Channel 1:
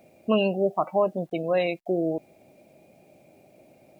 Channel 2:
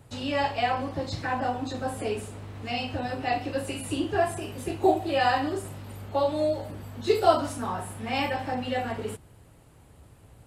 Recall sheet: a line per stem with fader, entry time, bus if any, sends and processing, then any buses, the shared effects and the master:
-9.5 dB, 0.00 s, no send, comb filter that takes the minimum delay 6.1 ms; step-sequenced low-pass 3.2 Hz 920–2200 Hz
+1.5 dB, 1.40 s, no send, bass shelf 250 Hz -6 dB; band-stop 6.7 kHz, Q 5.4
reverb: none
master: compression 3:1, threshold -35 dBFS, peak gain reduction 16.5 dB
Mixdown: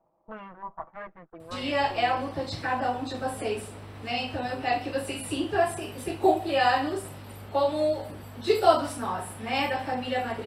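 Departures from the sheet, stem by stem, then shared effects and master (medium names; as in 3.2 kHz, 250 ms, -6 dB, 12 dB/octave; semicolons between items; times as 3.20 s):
stem 1 -9.5 dB -> -17.5 dB; master: missing compression 3:1, threshold -35 dBFS, peak gain reduction 16.5 dB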